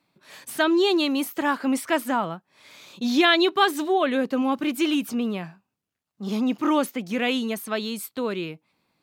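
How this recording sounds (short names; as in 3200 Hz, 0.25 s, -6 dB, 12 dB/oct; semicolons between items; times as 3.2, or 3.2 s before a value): noise floor -82 dBFS; spectral tilt -3.5 dB/oct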